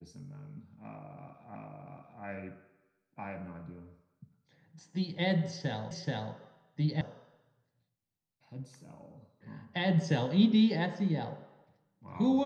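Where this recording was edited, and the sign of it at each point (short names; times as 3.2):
1.55 repeat of the last 0.69 s
5.91 repeat of the last 0.43 s
7.01 sound cut off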